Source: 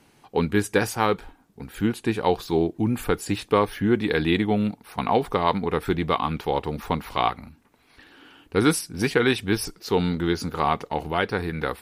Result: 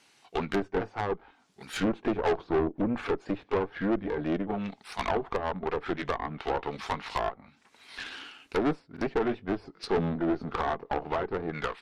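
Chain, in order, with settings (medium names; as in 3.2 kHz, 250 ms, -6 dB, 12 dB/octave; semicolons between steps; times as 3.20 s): sawtooth pitch modulation -1.5 st, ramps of 406 ms; low-pass 5.7 kHz 12 dB/octave; tilt EQ +4 dB/octave; level rider gain up to 15.5 dB; in parallel at -10 dB: crossover distortion -37 dBFS; on the sum: low-pass that closes with the level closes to 590 Hz, closed at -16.5 dBFS; valve stage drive 21 dB, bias 0.8; buffer glitch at 8.92 s, samples 2048, times 1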